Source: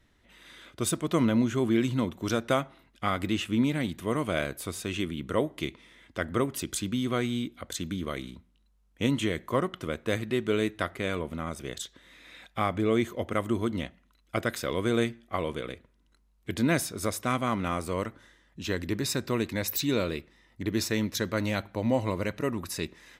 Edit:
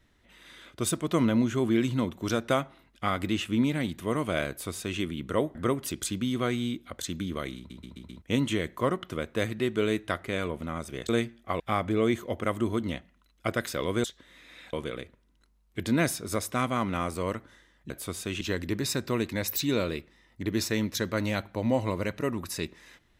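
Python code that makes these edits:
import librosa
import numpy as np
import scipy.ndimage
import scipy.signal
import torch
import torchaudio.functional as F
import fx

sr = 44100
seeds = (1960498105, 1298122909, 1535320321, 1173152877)

y = fx.edit(x, sr, fx.duplicate(start_s=4.49, length_s=0.51, to_s=18.61),
    fx.cut(start_s=5.55, length_s=0.71),
    fx.stutter_over(start_s=8.28, slice_s=0.13, count=5),
    fx.swap(start_s=11.8, length_s=0.69, other_s=14.93, other_length_s=0.51), tone=tone)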